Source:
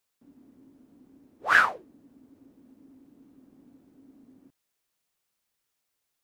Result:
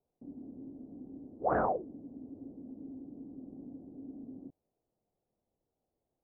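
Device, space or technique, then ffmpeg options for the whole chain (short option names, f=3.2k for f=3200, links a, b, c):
under water: -af "lowpass=f=630:w=0.5412,lowpass=f=630:w=1.3066,equalizer=f=750:t=o:w=0.28:g=5,volume=9dB"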